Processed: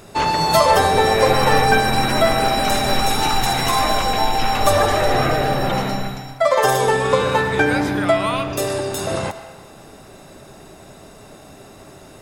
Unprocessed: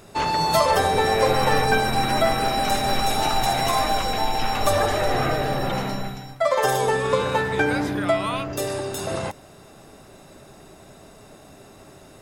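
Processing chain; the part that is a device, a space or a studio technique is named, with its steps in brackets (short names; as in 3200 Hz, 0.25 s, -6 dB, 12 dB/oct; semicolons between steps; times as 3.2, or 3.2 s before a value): filtered reverb send (on a send: HPF 590 Hz + LPF 8100 Hz 12 dB/oct + reverb RT60 1.2 s, pre-delay 0.107 s, DRR 11 dB); 3.09–3.83 on the sum: bell 630 Hz -9 dB 0.33 oct; gain +4.5 dB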